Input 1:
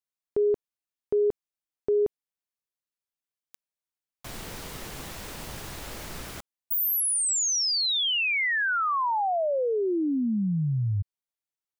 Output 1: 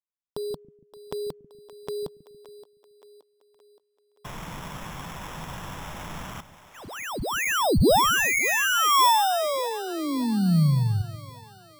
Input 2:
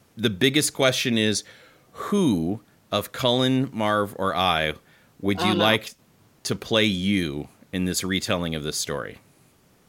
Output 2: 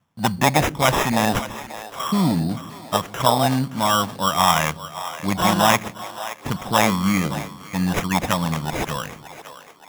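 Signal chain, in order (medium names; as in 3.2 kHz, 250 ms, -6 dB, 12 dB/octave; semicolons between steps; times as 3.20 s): level-controlled noise filter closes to 2.8 kHz, open at -18.5 dBFS; gate -53 dBFS, range -13 dB; fifteen-band graphic EQ 160 Hz +8 dB, 400 Hz -10 dB, 1 kHz +9 dB, 4 kHz +9 dB; sample-and-hold 10×; on a send: two-band feedback delay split 350 Hz, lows 141 ms, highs 572 ms, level -14 dB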